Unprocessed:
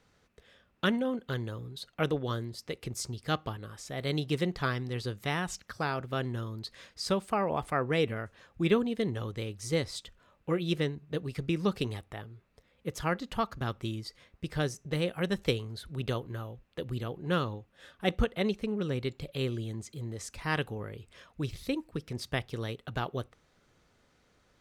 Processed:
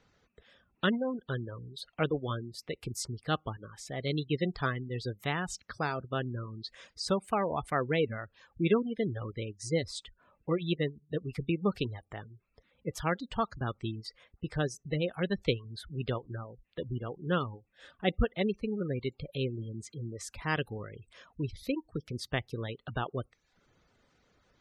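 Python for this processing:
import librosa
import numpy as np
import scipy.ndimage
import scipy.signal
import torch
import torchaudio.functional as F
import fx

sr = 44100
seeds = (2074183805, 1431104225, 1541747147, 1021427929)

y = fx.spec_gate(x, sr, threshold_db=-25, keep='strong')
y = fx.dereverb_blind(y, sr, rt60_s=0.53)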